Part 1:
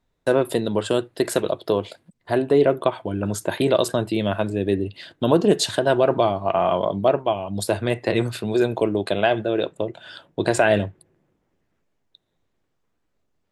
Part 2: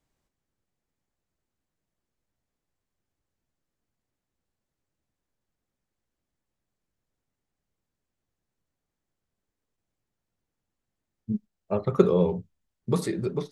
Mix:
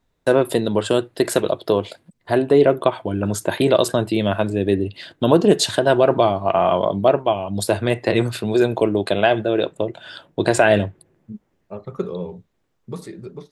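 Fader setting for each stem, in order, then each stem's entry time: +3.0 dB, -6.5 dB; 0.00 s, 0.00 s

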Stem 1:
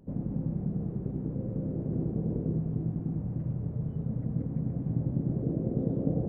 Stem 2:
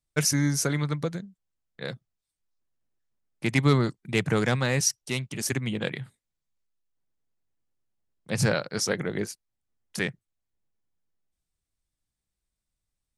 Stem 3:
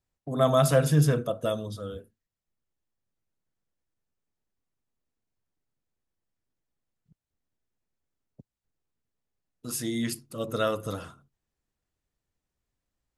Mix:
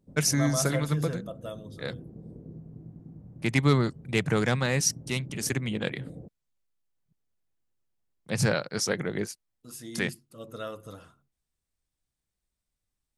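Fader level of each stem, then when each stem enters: -14.0 dB, -1.0 dB, -10.5 dB; 0.00 s, 0.00 s, 0.00 s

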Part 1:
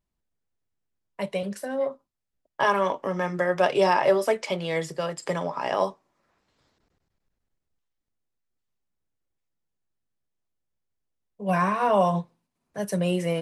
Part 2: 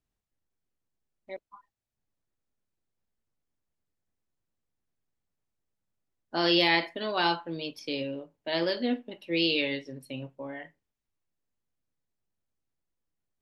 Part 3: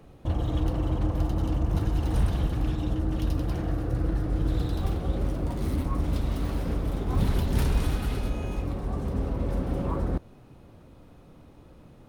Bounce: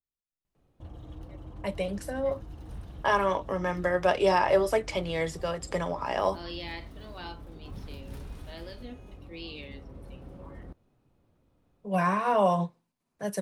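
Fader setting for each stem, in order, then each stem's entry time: -2.5 dB, -16.0 dB, -17.5 dB; 0.45 s, 0.00 s, 0.55 s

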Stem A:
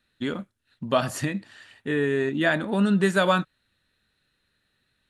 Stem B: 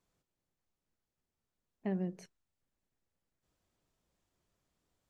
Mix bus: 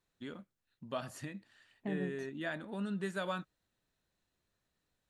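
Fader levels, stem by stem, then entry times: -16.5 dB, -3.0 dB; 0.00 s, 0.00 s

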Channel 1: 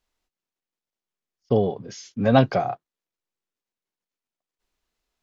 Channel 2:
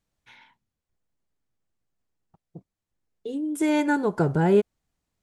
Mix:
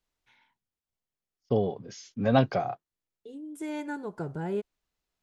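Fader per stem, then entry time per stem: -5.5 dB, -12.5 dB; 0.00 s, 0.00 s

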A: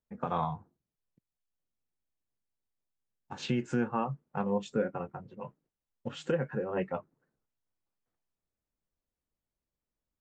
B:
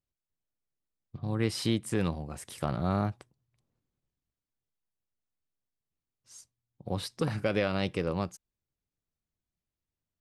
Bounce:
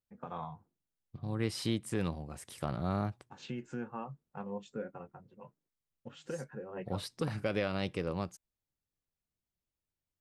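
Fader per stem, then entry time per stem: -10.0 dB, -4.5 dB; 0.00 s, 0.00 s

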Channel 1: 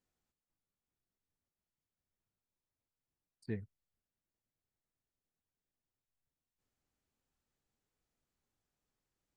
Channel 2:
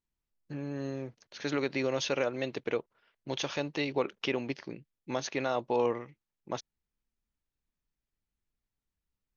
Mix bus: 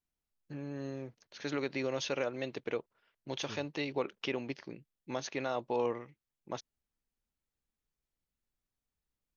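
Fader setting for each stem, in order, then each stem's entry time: -9.0 dB, -4.0 dB; 0.00 s, 0.00 s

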